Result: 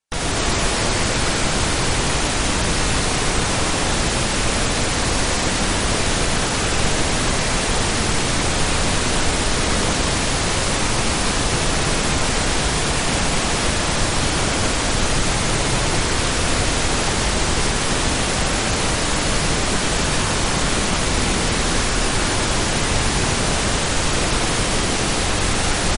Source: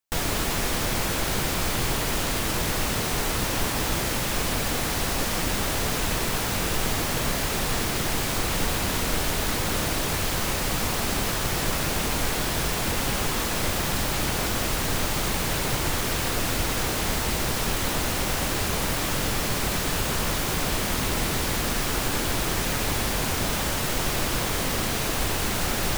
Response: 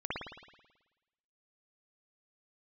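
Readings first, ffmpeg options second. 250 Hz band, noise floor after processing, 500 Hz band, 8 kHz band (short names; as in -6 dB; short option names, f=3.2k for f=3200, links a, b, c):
+7.0 dB, -21 dBFS, +7.0 dB, +7.0 dB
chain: -af "aecho=1:1:84.55|244.9:0.891|0.891,volume=3dB" -ar 32000 -c:a libmp3lame -b:a 40k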